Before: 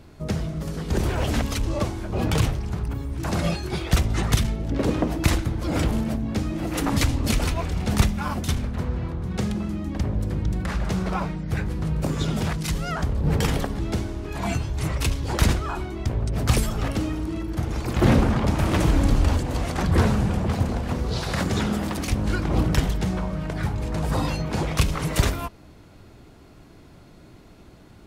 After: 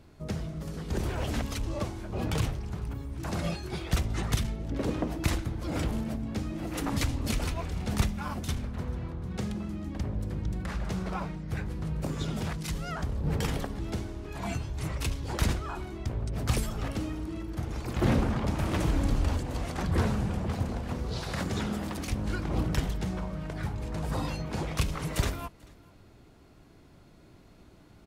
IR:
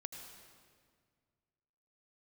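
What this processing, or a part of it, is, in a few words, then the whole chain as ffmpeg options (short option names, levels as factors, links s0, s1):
ducked delay: -filter_complex "[0:a]asplit=3[s0][s1][s2];[s1]adelay=439,volume=0.501[s3];[s2]apad=whole_len=1257073[s4];[s3][s4]sidechaincompress=threshold=0.01:ratio=6:attack=16:release=1330[s5];[s0][s5]amix=inputs=2:normalize=0,volume=0.422"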